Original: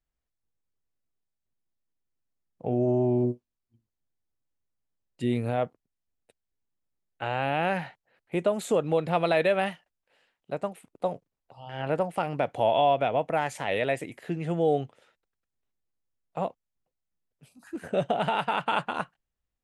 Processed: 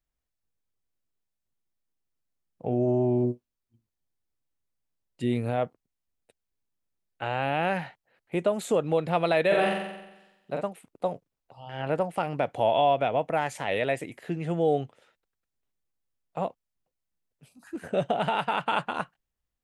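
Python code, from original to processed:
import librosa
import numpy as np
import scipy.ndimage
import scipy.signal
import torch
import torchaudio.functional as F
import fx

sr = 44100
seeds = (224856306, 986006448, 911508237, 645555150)

y = fx.room_flutter(x, sr, wall_m=7.7, rt60_s=0.97, at=(9.5, 10.6), fade=0.02)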